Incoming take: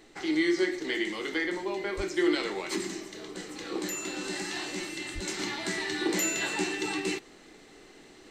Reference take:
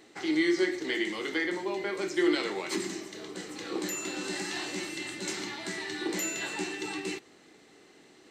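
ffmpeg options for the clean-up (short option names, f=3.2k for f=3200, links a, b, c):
-filter_complex "[0:a]asplit=3[a][b][c];[a]afade=t=out:st=1.96:d=0.02[d];[b]highpass=f=140:w=0.5412,highpass=f=140:w=1.3066,afade=t=in:st=1.96:d=0.02,afade=t=out:st=2.08:d=0.02[e];[c]afade=t=in:st=2.08:d=0.02[f];[d][e][f]amix=inputs=3:normalize=0,asplit=3[g][h][i];[g]afade=t=out:st=5.14:d=0.02[j];[h]highpass=f=140:w=0.5412,highpass=f=140:w=1.3066,afade=t=in:st=5.14:d=0.02,afade=t=out:st=5.26:d=0.02[k];[i]afade=t=in:st=5.26:d=0.02[l];[j][k][l]amix=inputs=3:normalize=0,agate=range=-21dB:threshold=-45dB,asetnsamples=n=441:p=0,asendcmd='5.39 volume volume -4dB',volume=0dB"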